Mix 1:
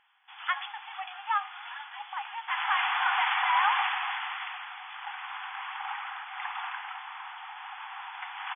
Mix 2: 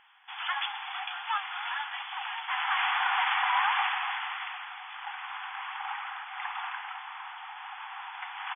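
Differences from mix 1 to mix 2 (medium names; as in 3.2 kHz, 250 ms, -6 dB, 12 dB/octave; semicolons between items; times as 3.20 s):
speech -3.0 dB; first sound +8.0 dB; reverb: off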